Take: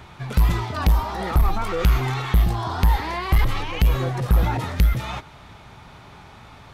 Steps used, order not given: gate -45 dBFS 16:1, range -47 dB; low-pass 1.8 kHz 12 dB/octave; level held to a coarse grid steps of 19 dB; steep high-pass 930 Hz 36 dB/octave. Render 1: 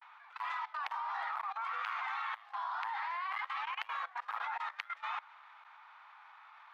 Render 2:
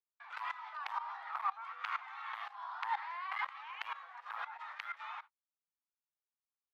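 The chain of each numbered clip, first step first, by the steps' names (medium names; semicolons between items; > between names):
low-pass > gate > steep high-pass > level held to a coarse grid; level held to a coarse grid > low-pass > gate > steep high-pass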